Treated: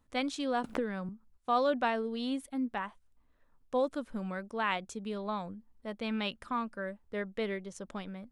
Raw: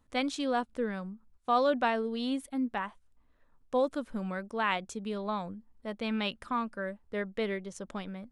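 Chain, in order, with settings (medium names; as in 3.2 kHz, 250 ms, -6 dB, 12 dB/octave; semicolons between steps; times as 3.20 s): 0.64–1.09 s: three bands compressed up and down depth 100%; trim -2 dB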